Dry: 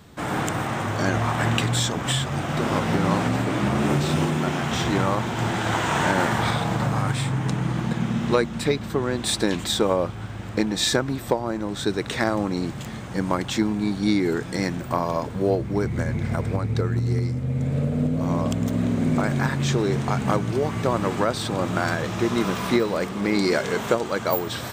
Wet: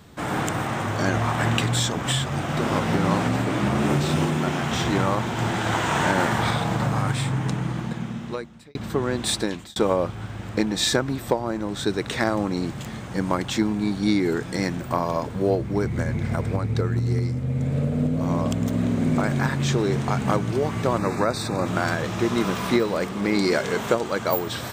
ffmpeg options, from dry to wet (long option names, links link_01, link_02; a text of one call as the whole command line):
ffmpeg -i in.wav -filter_complex "[0:a]asettb=1/sr,asplit=3[link_01][link_02][link_03];[link_01]atrim=end=20.984[link_04];[link_02]atrim=start=20.98:end=21.66,asetpts=PTS-STARTPTS,afade=type=in:duration=0.004:curve=qsin,afade=type=out:start_time=0.676:duration=0.004:curve=qsin,asuperstop=centerf=3100:order=8:qfactor=3.6[link_05];[link_03]atrim=start=21.656[link_06];[link_04][link_05]acrossfade=duration=0.004:curve1=hsin:curve2=qsin[link_07];[link_07][link_06]acrossfade=duration=0.004:curve1=qsin:curve2=hsin,asplit=3[link_08][link_09][link_10];[link_08]atrim=end=8.75,asetpts=PTS-STARTPTS,afade=type=out:start_time=7.38:duration=1.37[link_11];[link_09]atrim=start=8.75:end=9.76,asetpts=PTS-STARTPTS,afade=type=in:duration=0.004:curve=hsin,afade=type=out:start_time=0.56:duration=0.45[link_12];[link_10]atrim=start=9.76,asetpts=PTS-STARTPTS,afade=type=in:duration=0.004:curve=hsin[link_13];[link_11][link_12][link_13]concat=n=3:v=0:a=1" out.wav